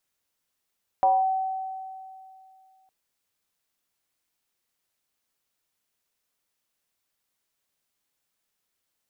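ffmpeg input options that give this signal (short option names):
-f lavfi -i "aevalsrc='0.168*pow(10,-3*t/2.49)*sin(2*PI*761*t+0.57*clip(1-t/0.22,0,1)*sin(2*PI*0.27*761*t))':d=1.86:s=44100"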